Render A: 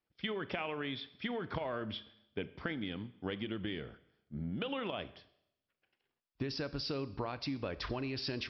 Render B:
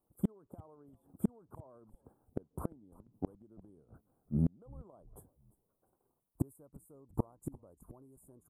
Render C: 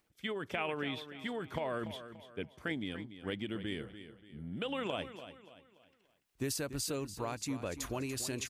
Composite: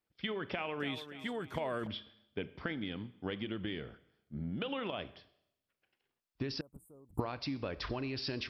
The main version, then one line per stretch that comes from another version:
A
0:00.80–0:01.87: punch in from C
0:06.61–0:07.20: punch in from B

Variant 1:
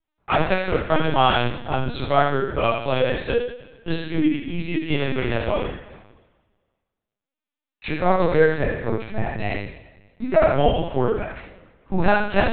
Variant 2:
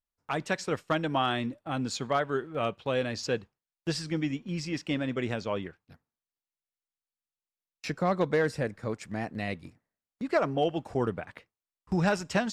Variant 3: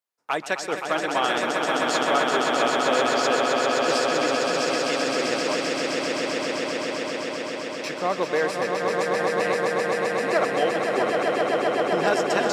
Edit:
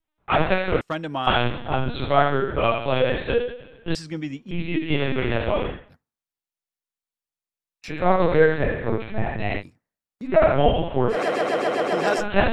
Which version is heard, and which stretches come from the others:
1
0:00.81–0:01.27: punch in from 2
0:03.95–0:04.51: punch in from 2
0:05.82–0:07.93: punch in from 2, crossfade 0.24 s
0:09.61–0:10.27: punch in from 2, crossfade 0.06 s
0:11.13–0:12.22: punch in from 3, crossfade 0.10 s

